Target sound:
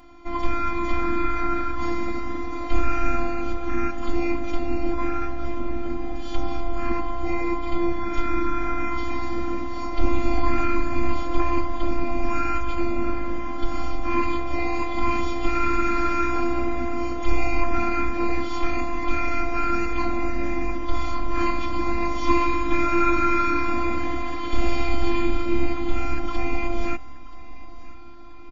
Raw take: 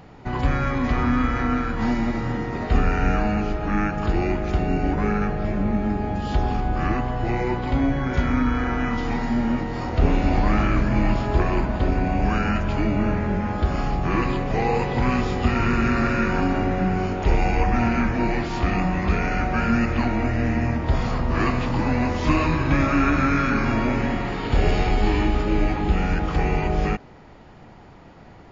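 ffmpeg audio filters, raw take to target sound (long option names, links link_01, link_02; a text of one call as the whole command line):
ffmpeg -i in.wav -af "afftfilt=real='hypot(re,im)*cos(PI*b)':imag='0':win_size=512:overlap=0.75,aecho=1:1:3.8:0.85,aecho=1:1:980|1960|2940|3920:0.126|0.0629|0.0315|0.0157" out.wav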